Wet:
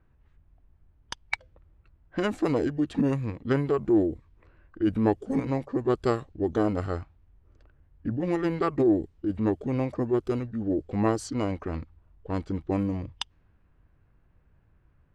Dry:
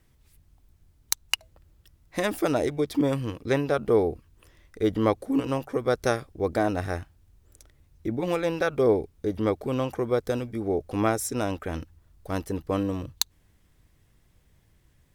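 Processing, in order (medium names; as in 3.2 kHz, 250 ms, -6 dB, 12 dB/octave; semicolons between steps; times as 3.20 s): level-controlled noise filter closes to 2.5 kHz, open at -21.5 dBFS; formant shift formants -4 st; treble shelf 3.7 kHz -10 dB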